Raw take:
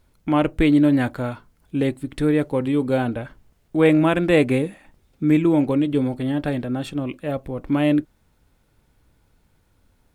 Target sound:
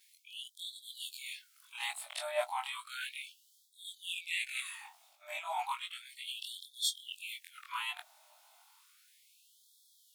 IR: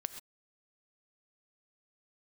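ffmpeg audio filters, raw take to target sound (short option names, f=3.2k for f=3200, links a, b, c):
-af "afftfilt=real='re':imag='-im':win_size=2048:overlap=0.75,areverse,acompressor=threshold=-28dB:ratio=16,areverse,equalizer=f=1.7k:t=o:w=0.78:g=-11,afftfilt=real='re*gte(b*sr/1024,570*pow(3300/570,0.5+0.5*sin(2*PI*0.33*pts/sr)))':imag='im*gte(b*sr/1024,570*pow(3300/570,0.5+0.5*sin(2*PI*0.33*pts/sr)))':win_size=1024:overlap=0.75,volume=13.5dB"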